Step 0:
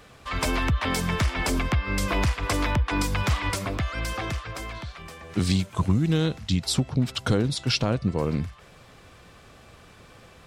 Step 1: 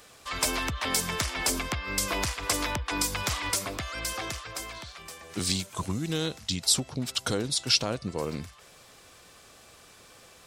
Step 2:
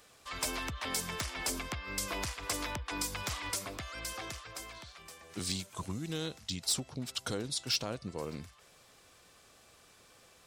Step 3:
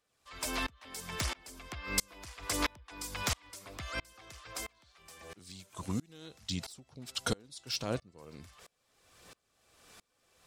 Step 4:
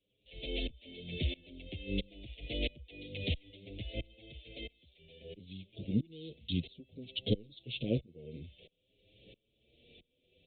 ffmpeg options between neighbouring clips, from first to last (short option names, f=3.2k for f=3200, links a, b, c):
-af "bass=f=250:g=-8,treble=f=4k:g=11,volume=-3.5dB"
-af "volume=16dB,asoftclip=hard,volume=-16dB,volume=-7.5dB"
-af "aphaser=in_gain=1:out_gain=1:delay=4.3:decay=0.22:speed=0.75:type=sinusoidal,aeval=exprs='val(0)*pow(10,-30*if(lt(mod(-1.5*n/s,1),2*abs(-1.5)/1000),1-mod(-1.5*n/s,1)/(2*abs(-1.5)/1000),(mod(-1.5*n/s,1)-2*abs(-1.5)/1000)/(1-2*abs(-1.5)/1000))/20)':c=same,volume=7dB"
-filter_complex "[0:a]asuperstop=centerf=1200:order=8:qfactor=0.57,aresample=8000,aresample=44100,asplit=2[a][b];[b]adelay=7.5,afreqshift=0.56[c];[a][c]amix=inputs=2:normalize=1,volume=6.5dB"